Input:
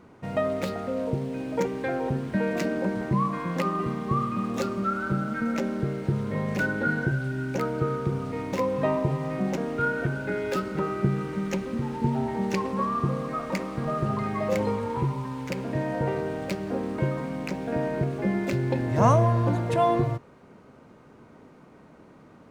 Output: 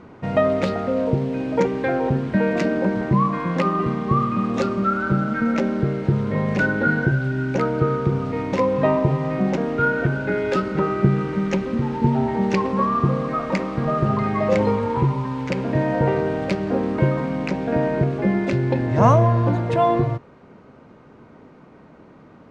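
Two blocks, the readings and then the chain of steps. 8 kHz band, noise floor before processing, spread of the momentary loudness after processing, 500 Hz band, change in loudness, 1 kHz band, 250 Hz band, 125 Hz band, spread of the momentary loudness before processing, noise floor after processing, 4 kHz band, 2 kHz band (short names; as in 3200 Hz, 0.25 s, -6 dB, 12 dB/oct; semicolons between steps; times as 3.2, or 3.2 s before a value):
n/a, -52 dBFS, 4 LU, +6.5 dB, +6.5 dB, +6.0 dB, +6.5 dB, +6.5 dB, 6 LU, -47 dBFS, +4.0 dB, +6.0 dB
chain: in parallel at +1 dB: vocal rider 2 s; on the sum: air absorption 100 m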